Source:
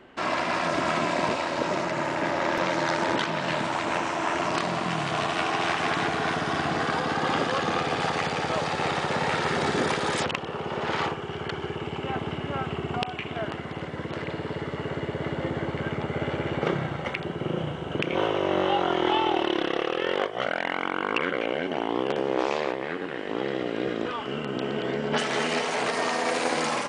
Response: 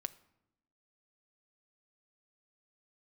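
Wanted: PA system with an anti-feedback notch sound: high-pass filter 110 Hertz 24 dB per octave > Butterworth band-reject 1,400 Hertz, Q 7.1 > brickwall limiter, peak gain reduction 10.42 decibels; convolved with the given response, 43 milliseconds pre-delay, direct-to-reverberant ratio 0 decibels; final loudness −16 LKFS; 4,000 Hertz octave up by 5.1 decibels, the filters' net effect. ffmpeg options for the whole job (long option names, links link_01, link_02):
-filter_complex "[0:a]equalizer=frequency=4000:width_type=o:gain=7,asplit=2[link_01][link_02];[1:a]atrim=start_sample=2205,adelay=43[link_03];[link_02][link_03]afir=irnorm=-1:irlink=0,volume=2dB[link_04];[link_01][link_04]amix=inputs=2:normalize=0,highpass=frequency=110:width=0.5412,highpass=frequency=110:width=1.3066,asuperstop=centerf=1400:order=8:qfactor=7.1,volume=9.5dB,alimiter=limit=-5.5dB:level=0:latency=1"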